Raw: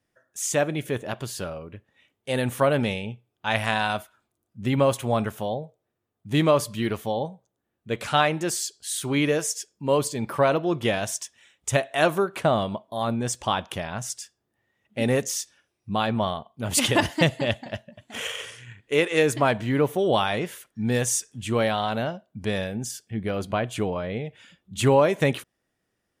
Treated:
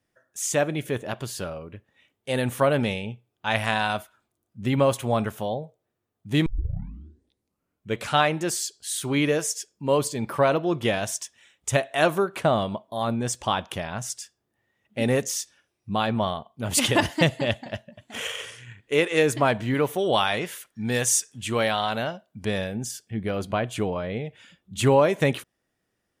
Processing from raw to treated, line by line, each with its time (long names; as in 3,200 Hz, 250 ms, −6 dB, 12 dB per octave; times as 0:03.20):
0:06.46: tape start 1.52 s
0:19.74–0:22.45: tilt shelving filter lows −3.5 dB, about 740 Hz